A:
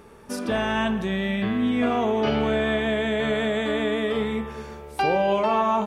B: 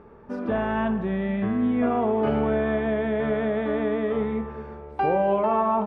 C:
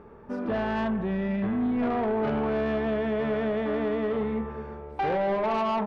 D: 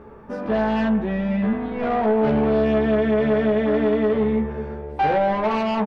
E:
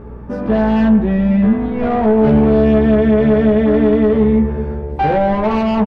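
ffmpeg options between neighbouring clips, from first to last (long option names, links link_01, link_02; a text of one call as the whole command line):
ffmpeg -i in.wav -af "lowpass=1400" out.wav
ffmpeg -i in.wav -af "asoftclip=type=tanh:threshold=-22dB" out.wav
ffmpeg -i in.wav -filter_complex "[0:a]asplit=2[link_01][link_02];[link_02]adelay=14,volume=-2.5dB[link_03];[link_01][link_03]amix=inputs=2:normalize=0,volume=4dB" out.wav
ffmpeg -i in.wav -filter_complex "[0:a]aeval=exprs='val(0)+0.00631*(sin(2*PI*60*n/s)+sin(2*PI*2*60*n/s)/2+sin(2*PI*3*60*n/s)/3+sin(2*PI*4*60*n/s)/4+sin(2*PI*5*60*n/s)/5)':channel_layout=same,lowshelf=frequency=350:gain=10,asplit=2[link_01][link_02];[link_02]adelay=110,highpass=300,lowpass=3400,asoftclip=type=hard:threshold=-13.5dB,volume=-19dB[link_03];[link_01][link_03]amix=inputs=2:normalize=0,volume=2dB" out.wav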